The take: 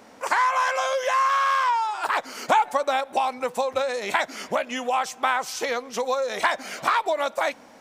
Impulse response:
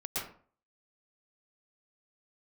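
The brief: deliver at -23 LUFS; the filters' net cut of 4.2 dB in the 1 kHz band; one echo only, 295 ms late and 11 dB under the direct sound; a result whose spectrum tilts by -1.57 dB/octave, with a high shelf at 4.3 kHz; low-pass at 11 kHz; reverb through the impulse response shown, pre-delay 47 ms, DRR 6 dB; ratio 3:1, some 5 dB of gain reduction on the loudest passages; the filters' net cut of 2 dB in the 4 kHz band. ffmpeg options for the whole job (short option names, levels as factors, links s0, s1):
-filter_complex "[0:a]lowpass=11000,equalizer=f=1000:t=o:g=-5,equalizer=f=4000:t=o:g=-5,highshelf=f=4300:g=5,acompressor=threshold=0.0447:ratio=3,aecho=1:1:295:0.282,asplit=2[s0][s1];[1:a]atrim=start_sample=2205,adelay=47[s2];[s1][s2]afir=irnorm=-1:irlink=0,volume=0.316[s3];[s0][s3]amix=inputs=2:normalize=0,volume=2.11"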